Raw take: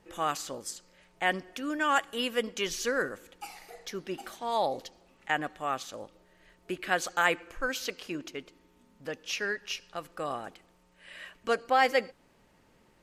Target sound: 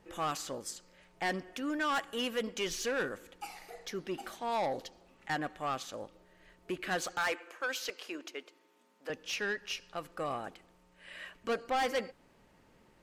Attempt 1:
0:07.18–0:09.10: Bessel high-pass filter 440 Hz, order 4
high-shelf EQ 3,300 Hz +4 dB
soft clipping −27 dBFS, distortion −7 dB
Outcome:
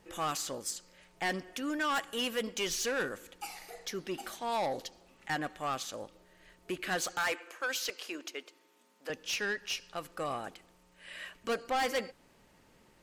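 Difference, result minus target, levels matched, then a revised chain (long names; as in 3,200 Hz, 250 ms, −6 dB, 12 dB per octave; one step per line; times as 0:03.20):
8,000 Hz band +4.0 dB
0:07.18–0:09.10: Bessel high-pass filter 440 Hz, order 4
high-shelf EQ 3,300 Hz −3 dB
soft clipping −27 dBFS, distortion −8 dB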